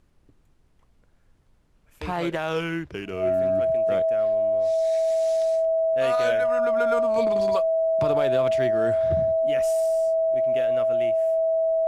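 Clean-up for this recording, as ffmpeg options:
ffmpeg -i in.wav -af "bandreject=frequency=650:width=30,agate=range=-21dB:threshold=-51dB" out.wav

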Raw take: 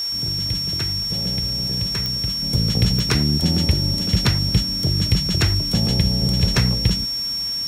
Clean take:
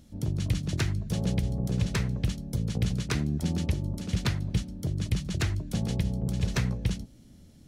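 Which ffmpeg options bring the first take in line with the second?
ffmpeg -i in.wav -af "adeclick=threshold=4,bandreject=frequency=5500:width=30,afwtdn=0.01,asetnsamples=nb_out_samples=441:pad=0,asendcmd='2.42 volume volume -9dB',volume=0dB" out.wav

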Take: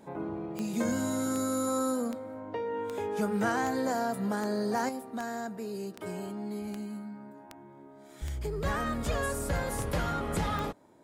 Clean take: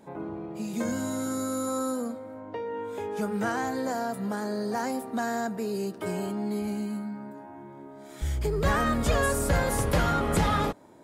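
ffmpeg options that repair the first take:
ffmpeg -i in.wav -af "adeclick=threshold=4,asetnsamples=nb_out_samples=441:pad=0,asendcmd='4.89 volume volume 6.5dB',volume=0dB" out.wav

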